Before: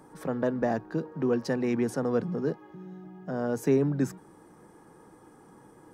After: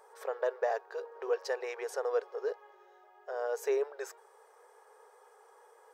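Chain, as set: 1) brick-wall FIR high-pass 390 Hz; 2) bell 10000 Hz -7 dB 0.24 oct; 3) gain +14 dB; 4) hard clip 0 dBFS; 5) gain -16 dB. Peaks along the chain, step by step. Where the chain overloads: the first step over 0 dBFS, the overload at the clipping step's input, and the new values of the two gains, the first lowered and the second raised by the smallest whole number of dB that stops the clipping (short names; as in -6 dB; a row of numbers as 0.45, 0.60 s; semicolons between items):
-16.5, -16.5, -2.5, -2.5, -18.5 dBFS; no overload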